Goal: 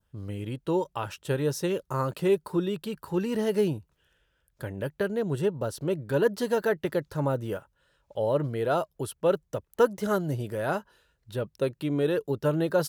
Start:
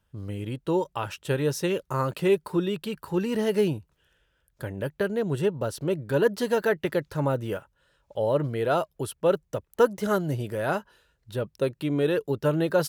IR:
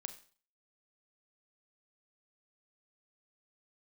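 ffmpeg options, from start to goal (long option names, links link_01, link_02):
-af "adynamicequalizer=threshold=0.00398:dfrequency=2400:dqfactor=1.4:tfrequency=2400:tqfactor=1.4:attack=5:release=100:ratio=0.375:range=2.5:mode=cutabove:tftype=bell,volume=-1.5dB"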